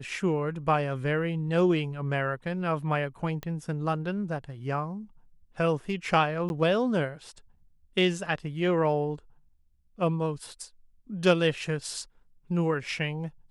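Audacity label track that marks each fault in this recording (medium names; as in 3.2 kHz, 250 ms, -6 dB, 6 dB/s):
3.430000	3.430000	pop -21 dBFS
6.490000	6.500000	dropout 11 ms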